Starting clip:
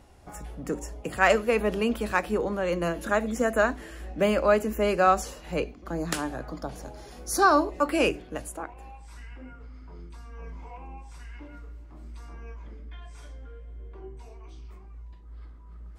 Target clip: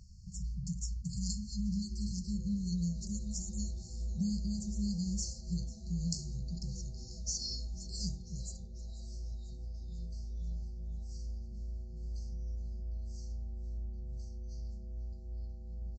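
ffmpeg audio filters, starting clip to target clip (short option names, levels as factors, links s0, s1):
-filter_complex "[0:a]afftfilt=real='re*(1-between(b*sr/4096,210,4200))':imag='im*(1-between(b*sr/4096,210,4200))':win_size=4096:overlap=0.75,acompressor=threshold=0.0251:ratio=6,asplit=2[s0][s1];[s1]asplit=6[s2][s3][s4][s5][s6][s7];[s2]adelay=493,afreqshift=-140,volume=0.119[s8];[s3]adelay=986,afreqshift=-280,volume=0.0724[s9];[s4]adelay=1479,afreqshift=-420,volume=0.0442[s10];[s5]adelay=1972,afreqshift=-560,volume=0.0269[s11];[s6]adelay=2465,afreqshift=-700,volume=0.0164[s12];[s7]adelay=2958,afreqshift=-840,volume=0.01[s13];[s8][s9][s10][s11][s12][s13]amix=inputs=6:normalize=0[s14];[s0][s14]amix=inputs=2:normalize=0,aresample=16000,aresample=44100,volume=1.33"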